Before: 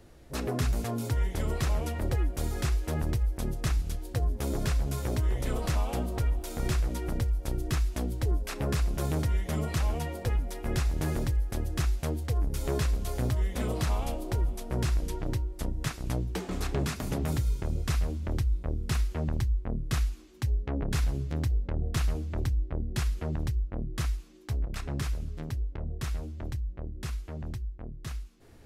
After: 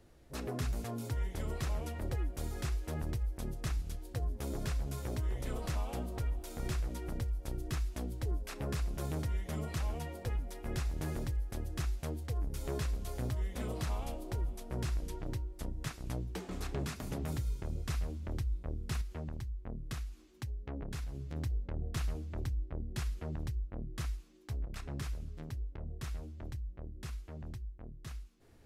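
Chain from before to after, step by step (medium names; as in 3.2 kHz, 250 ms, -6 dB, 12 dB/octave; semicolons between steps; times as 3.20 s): 19.01–21.36 s: compression, threshold -29 dBFS, peak gain reduction 6.5 dB; trim -7.5 dB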